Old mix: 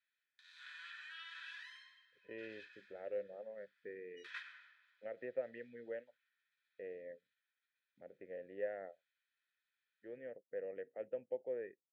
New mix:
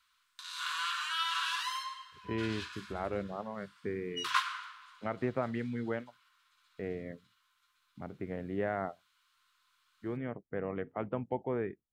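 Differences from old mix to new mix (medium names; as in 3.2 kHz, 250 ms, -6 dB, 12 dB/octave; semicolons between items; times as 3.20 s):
background: remove Butterworth band-stop 2.8 kHz, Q 7.1; master: remove vowel filter e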